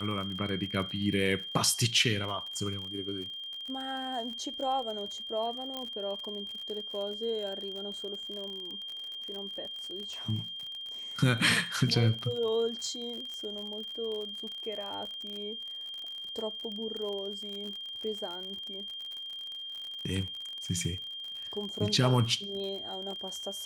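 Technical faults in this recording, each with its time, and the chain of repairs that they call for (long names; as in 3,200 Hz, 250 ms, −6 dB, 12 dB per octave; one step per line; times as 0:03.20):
surface crackle 49 per second −37 dBFS
whistle 3,200 Hz −38 dBFS
0:05.77: click −22 dBFS
0:13.34: click −28 dBFS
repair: click removal
notch filter 3,200 Hz, Q 30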